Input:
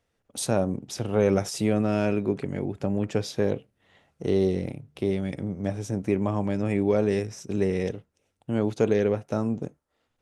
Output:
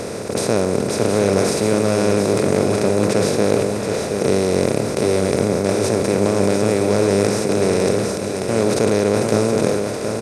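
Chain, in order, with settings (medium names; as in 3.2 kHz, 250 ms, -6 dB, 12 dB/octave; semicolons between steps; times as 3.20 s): spectral levelling over time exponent 0.2; delay 724 ms -6.5 dB; decay stretcher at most 29 dB/s; trim -1 dB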